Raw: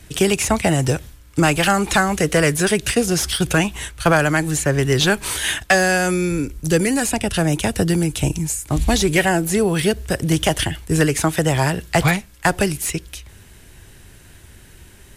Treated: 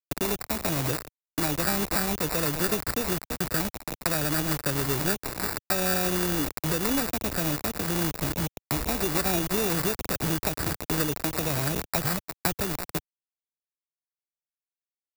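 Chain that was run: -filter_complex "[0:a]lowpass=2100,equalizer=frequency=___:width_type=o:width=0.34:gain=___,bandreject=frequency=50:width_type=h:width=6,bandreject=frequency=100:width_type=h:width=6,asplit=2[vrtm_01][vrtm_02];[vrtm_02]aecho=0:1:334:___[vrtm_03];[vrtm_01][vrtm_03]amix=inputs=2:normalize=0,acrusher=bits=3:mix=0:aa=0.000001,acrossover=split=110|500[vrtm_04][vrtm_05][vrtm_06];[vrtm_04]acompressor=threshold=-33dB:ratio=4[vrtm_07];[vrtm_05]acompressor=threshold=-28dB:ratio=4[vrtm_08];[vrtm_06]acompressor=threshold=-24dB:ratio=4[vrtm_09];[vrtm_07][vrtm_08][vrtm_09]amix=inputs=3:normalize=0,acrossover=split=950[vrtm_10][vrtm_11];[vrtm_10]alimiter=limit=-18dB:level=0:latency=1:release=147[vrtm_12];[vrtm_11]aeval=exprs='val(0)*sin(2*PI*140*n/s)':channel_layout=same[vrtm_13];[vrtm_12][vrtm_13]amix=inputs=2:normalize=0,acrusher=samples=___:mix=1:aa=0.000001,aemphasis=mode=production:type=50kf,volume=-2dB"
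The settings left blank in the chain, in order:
290, 4.5, 0.158, 14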